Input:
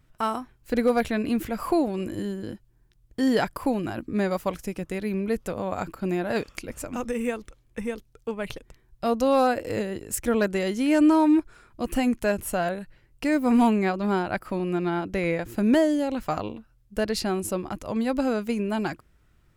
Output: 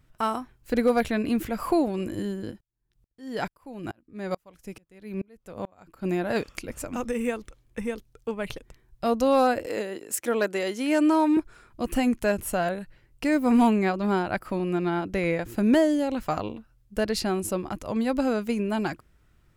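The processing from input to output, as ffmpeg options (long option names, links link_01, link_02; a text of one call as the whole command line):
ffmpeg -i in.wav -filter_complex "[0:a]asplit=3[link_01][link_02][link_03];[link_01]afade=type=out:start_time=2.5:duration=0.02[link_04];[link_02]aeval=exprs='val(0)*pow(10,-35*if(lt(mod(-2.3*n/s,1),2*abs(-2.3)/1000),1-mod(-2.3*n/s,1)/(2*abs(-2.3)/1000),(mod(-2.3*n/s,1)-2*abs(-2.3)/1000)/(1-2*abs(-2.3)/1000))/20)':channel_layout=same,afade=type=in:start_time=2.5:duration=0.02,afade=type=out:start_time=6.04:duration=0.02[link_05];[link_03]afade=type=in:start_time=6.04:duration=0.02[link_06];[link_04][link_05][link_06]amix=inputs=3:normalize=0,asettb=1/sr,asplit=3[link_07][link_08][link_09];[link_07]atrim=end=9.664[link_10];[link_08]atrim=start=9.66:end=11.37,asetpts=PTS-STARTPTS,afade=type=in:duration=0.004:curve=qsin,afade=type=out:start_time=1.706:duration=0.004:curve=qsin,highpass=310[link_11];[link_09]atrim=start=11.366[link_12];[link_10][link_11]acrossfade=duration=0.004:curve1=hsin:curve2=qsin[link_13];[link_13][link_12]acrossfade=duration=0.004:curve1=qsin:curve2=hsin" out.wav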